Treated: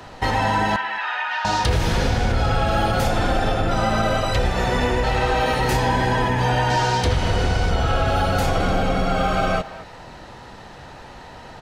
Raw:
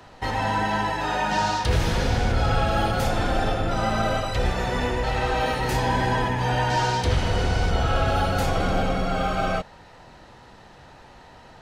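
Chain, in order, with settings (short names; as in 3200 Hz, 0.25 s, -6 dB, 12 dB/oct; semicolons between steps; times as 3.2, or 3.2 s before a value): compressor 4:1, threshold -24 dBFS, peak gain reduction 7 dB; 0.76–1.45 Butterworth band-pass 1900 Hz, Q 0.92; speakerphone echo 0.22 s, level -15 dB; gain +7.5 dB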